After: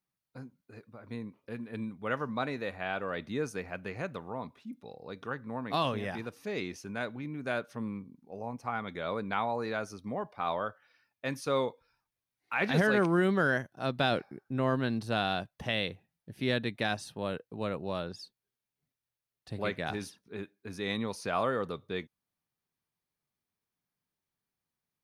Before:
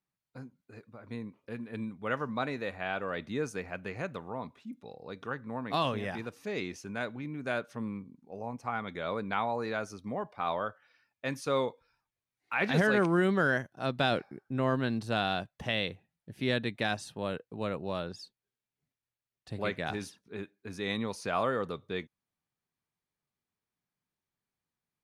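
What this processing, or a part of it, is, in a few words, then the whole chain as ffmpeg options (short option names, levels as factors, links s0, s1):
exciter from parts: -filter_complex "[0:a]equalizer=f=7400:w=3:g=-5.5,asplit=2[s0][s1];[s1]highpass=3700,asoftclip=type=tanh:threshold=0.0211,volume=0.355[s2];[s0][s2]amix=inputs=2:normalize=0"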